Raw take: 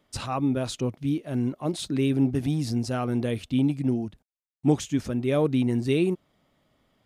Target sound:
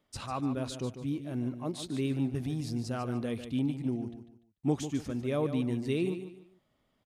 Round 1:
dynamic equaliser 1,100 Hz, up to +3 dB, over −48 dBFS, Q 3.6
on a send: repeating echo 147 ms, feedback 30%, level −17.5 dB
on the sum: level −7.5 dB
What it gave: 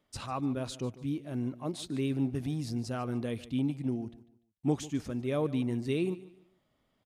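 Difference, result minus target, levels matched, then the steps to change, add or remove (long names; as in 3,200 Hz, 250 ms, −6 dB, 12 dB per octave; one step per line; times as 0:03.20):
echo-to-direct −7.5 dB
change: repeating echo 147 ms, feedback 30%, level −10 dB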